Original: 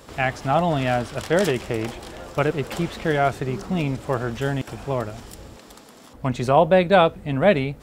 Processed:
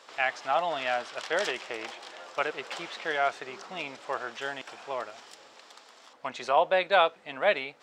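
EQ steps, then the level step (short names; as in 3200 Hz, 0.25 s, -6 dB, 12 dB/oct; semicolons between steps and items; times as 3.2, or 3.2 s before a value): HPF 720 Hz 12 dB/oct; air absorption 150 m; high shelf 4400 Hz +11.5 dB; -3.0 dB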